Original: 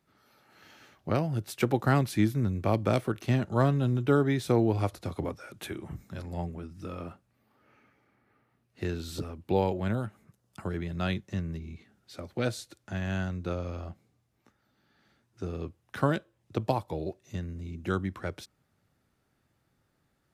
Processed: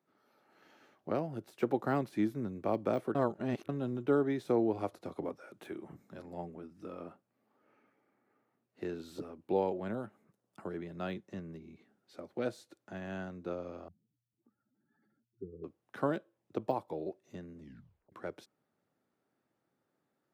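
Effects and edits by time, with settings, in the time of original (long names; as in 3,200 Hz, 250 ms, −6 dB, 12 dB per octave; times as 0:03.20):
0:03.15–0:03.69: reverse
0:13.88–0:15.64: expanding power law on the bin magnitudes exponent 2.8
0:17.58: tape stop 0.54 s
whole clip: high-pass filter 270 Hz 12 dB per octave; de-essing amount 95%; tilt shelving filter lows +6 dB, about 1,400 Hz; level −7.5 dB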